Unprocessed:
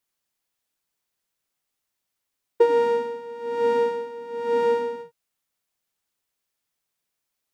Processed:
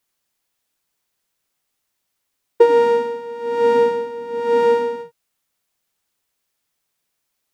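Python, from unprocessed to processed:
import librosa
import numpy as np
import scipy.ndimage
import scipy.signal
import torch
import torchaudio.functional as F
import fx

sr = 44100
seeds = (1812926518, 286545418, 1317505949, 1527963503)

y = fx.low_shelf(x, sr, hz=170.0, db=7.0, at=(3.74, 4.4))
y = y * librosa.db_to_amplitude(6.0)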